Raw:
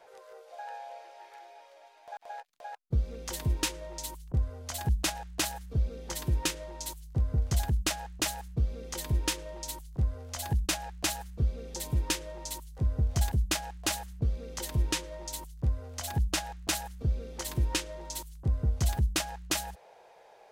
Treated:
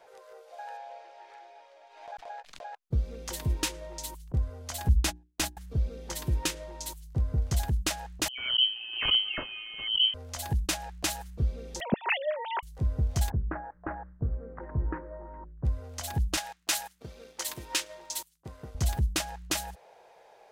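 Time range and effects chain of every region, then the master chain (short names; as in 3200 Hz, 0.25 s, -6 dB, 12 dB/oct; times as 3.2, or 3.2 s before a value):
0.77–2.82 air absorption 64 m + backwards sustainer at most 77 dB/s
4.88–5.57 gate -33 dBFS, range -35 dB + low shelf 190 Hz +8.5 dB + notches 60/120/180/240/300/360 Hz
8.28–10.14 dispersion highs, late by 0.105 s, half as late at 520 Hz + inverted band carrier 3100 Hz + backwards sustainer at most 77 dB/s
11.8–12.63 sine-wave speech + high shelf 2200 Hz +9 dB
13.3–15.65 steep low-pass 1700 Hz 48 dB/oct + notches 60/120/180/240/300/360/420/480/540/600 Hz
16.37–18.75 expander -41 dBFS + HPF 960 Hz 6 dB/oct + sample leveller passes 1
whole clip: dry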